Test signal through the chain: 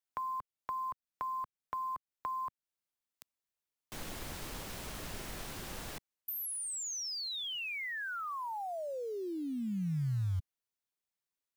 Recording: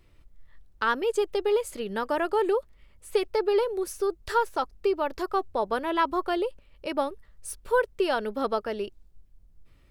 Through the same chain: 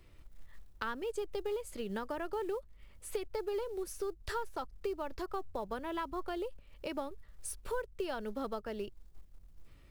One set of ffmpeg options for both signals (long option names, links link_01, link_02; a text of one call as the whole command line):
ffmpeg -i in.wav -filter_complex "[0:a]acrusher=bits=7:mode=log:mix=0:aa=0.000001,acrossover=split=170[link_01][link_02];[link_02]acompressor=threshold=-40dB:ratio=3[link_03];[link_01][link_03]amix=inputs=2:normalize=0" out.wav